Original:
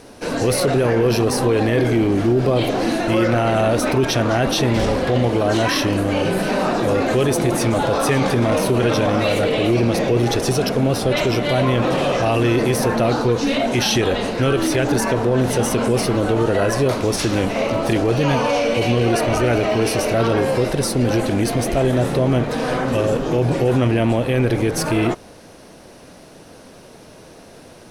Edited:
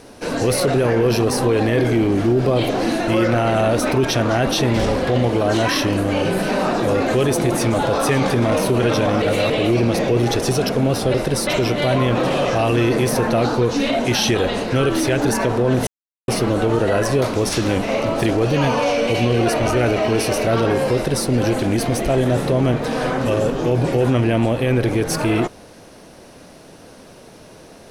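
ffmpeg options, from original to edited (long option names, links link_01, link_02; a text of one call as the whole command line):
ffmpeg -i in.wav -filter_complex "[0:a]asplit=7[link_01][link_02][link_03][link_04][link_05][link_06][link_07];[link_01]atrim=end=9.222[link_08];[link_02]atrim=start=9.218:end=9.502,asetpts=PTS-STARTPTS,areverse[link_09];[link_03]atrim=start=9.498:end=11.142[link_10];[link_04]atrim=start=20.608:end=20.942[link_11];[link_05]atrim=start=11.138:end=15.54,asetpts=PTS-STARTPTS,afade=type=out:start_time=4.398:duration=0.004:curve=hsin[link_12];[link_06]atrim=start=15.54:end=15.95,asetpts=PTS-STARTPTS,volume=0[link_13];[link_07]atrim=start=15.95,asetpts=PTS-STARTPTS,afade=type=in:duration=0.004:curve=hsin[link_14];[link_08][link_09]acrossfade=duration=0.004:curve1=hsin:curve2=hsin[link_15];[link_15][link_10]acrossfade=duration=0.004:curve1=hsin:curve2=hsin[link_16];[link_16][link_11]acrossfade=duration=0.004:curve1=hsin:curve2=hsin[link_17];[link_12][link_13][link_14]concat=n=3:v=0:a=1[link_18];[link_17][link_18]acrossfade=duration=0.004:curve1=hsin:curve2=hsin" out.wav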